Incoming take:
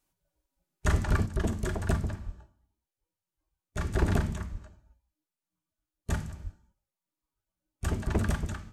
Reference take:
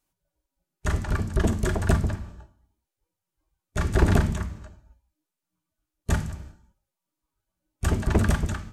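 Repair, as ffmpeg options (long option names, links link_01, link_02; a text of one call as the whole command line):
ffmpeg -i in.wav -filter_complex "[0:a]asplit=3[link_01][link_02][link_03];[link_01]afade=type=out:start_time=2.25:duration=0.02[link_04];[link_02]highpass=frequency=140:width=0.5412,highpass=frequency=140:width=1.3066,afade=type=in:start_time=2.25:duration=0.02,afade=type=out:start_time=2.37:duration=0.02[link_05];[link_03]afade=type=in:start_time=2.37:duration=0.02[link_06];[link_04][link_05][link_06]amix=inputs=3:normalize=0,asplit=3[link_07][link_08][link_09];[link_07]afade=type=out:start_time=4.51:duration=0.02[link_10];[link_08]highpass=frequency=140:width=0.5412,highpass=frequency=140:width=1.3066,afade=type=in:start_time=4.51:duration=0.02,afade=type=out:start_time=4.63:duration=0.02[link_11];[link_09]afade=type=in:start_time=4.63:duration=0.02[link_12];[link_10][link_11][link_12]amix=inputs=3:normalize=0,asplit=3[link_13][link_14][link_15];[link_13]afade=type=out:start_time=6.43:duration=0.02[link_16];[link_14]highpass=frequency=140:width=0.5412,highpass=frequency=140:width=1.3066,afade=type=in:start_time=6.43:duration=0.02,afade=type=out:start_time=6.55:duration=0.02[link_17];[link_15]afade=type=in:start_time=6.55:duration=0.02[link_18];[link_16][link_17][link_18]amix=inputs=3:normalize=0,asetnsamples=nb_out_samples=441:pad=0,asendcmd='1.26 volume volume 6.5dB',volume=0dB" out.wav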